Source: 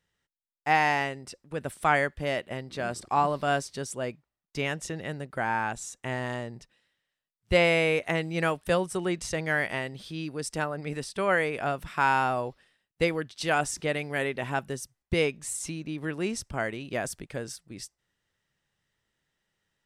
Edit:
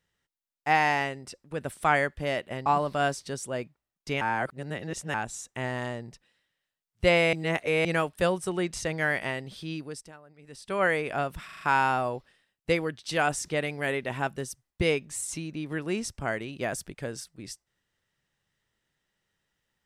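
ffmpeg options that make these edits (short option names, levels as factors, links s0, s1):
-filter_complex "[0:a]asplit=12[s0][s1][s2][s3][s4][s5][s6][s7][s8][s9][s10][s11];[s0]atrim=end=2.662[s12];[s1]atrim=start=3.138:end=4.692[s13];[s2]atrim=start=4.688:end=5.622,asetpts=PTS-STARTPTS,areverse[s14];[s3]atrim=start=5.618:end=7.812[s15];[s4]atrim=start=7.808:end=8.332,asetpts=PTS-STARTPTS,areverse[s16];[s5]atrim=start=8.328:end=10.6,asetpts=PTS-STARTPTS,afade=t=out:st=1.882:d=0.39:silence=0.1[s17];[s6]atrim=start=10.6:end=10.93,asetpts=PTS-STARTPTS,volume=0.1[s18];[s7]atrim=start=10.93:end=11.972,asetpts=PTS-STARTPTS,afade=t=in:d=0.39:silence=0.1[s19];[s8]atrim=start=11.928:end=11.972[s20];[s9]atrim=start=11.928:end=11.972[s21];[s10]atrim=start=11.928:end=11.972[s22];[s11]atrim=start=11.928[s23];[s12][s13]acrossfade=d=0.004:c1=hsin:c2=hsin[s24];[s24][s14]acrossfade=d=0.004:c1=hsin:c2=hsin[s25];[s25][s15]acrossfade=d=0.004:c1=hsin:c2=hsin[s26];[s26][s16]acrossfade=d=0.004:c1=hsin:c2=hsin[s27];[s17][s18][s19]concat=n=3:v=0:a=1[s28];[s27][s28]acrossfade=d=0.004:c1=hsin:c2=hsin[s29];[s29][s20]acrossfade=d=0.004:c1=hsin:c2=hsin[s30];[s30][s21]acrossfade=d=0.004:c1=hsin:c2=hsin[s31];[s31][s22]acrossfade=d=0.004:c1=hsin:c2=hsin[s32];[s32][s23]acrossfade=d=0.004:c1=hsin:c2=hsin"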